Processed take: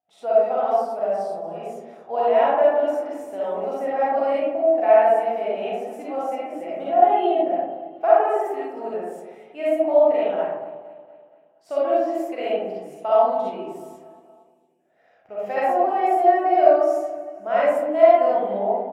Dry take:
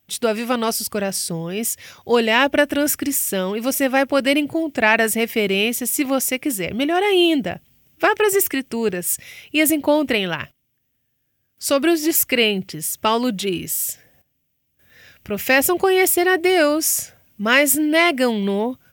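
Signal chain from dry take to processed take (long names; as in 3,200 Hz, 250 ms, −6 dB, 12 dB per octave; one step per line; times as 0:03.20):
resonant band-pass 720 Hz, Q 5.6
repeating echo 234 ms, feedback 58%, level −19.5 dB
convolution reverb RT60 1.2 s, pre-delay 15 ms, DRR −8.5 dB
level −1.5 dB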